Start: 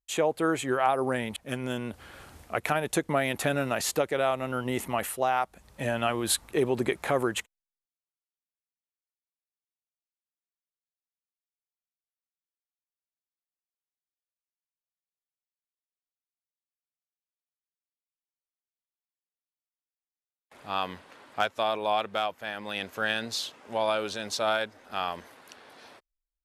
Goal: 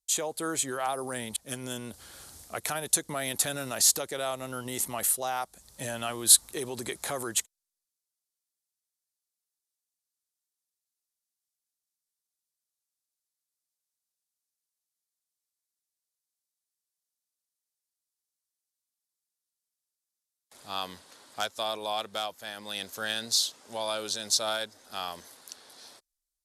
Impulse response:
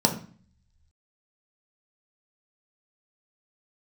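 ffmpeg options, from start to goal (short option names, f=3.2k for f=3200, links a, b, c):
-filter_complex "[0:a]lowpass=12k,acrossover=split=780|1200[a][b][c];[a]alimiter=limit=-23.5dB:level=0:latency=1[d];[d][b][c]amix=inputs=3:normalize=0,aexciter=amount=5.2:drive=5.8:freq=3.7k,volume=-5.5dB"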